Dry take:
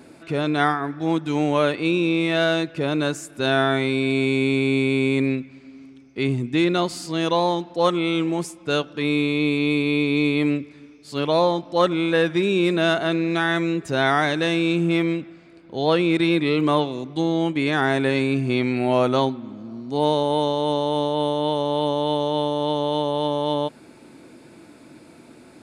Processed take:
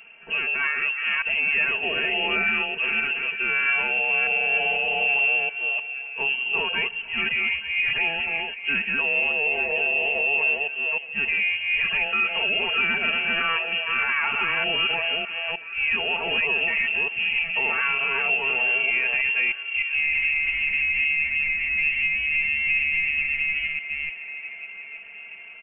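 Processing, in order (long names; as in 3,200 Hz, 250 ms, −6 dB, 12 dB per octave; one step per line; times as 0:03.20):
delay that plays each chunk backwards 305 ms, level −3 dB
mains-hum notches 50/100/150/200 Hz
comb filter 4.3 ms, depth 74%
brickwall limiter −11.5 dBFS, peak gain reduction 8 dB
delay with a band-pass on its return 873 ms, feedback 48%, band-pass 710 Hz, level −10.5 dB
voice inversion scrambler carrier 3,000 Hz
level −3.5 dB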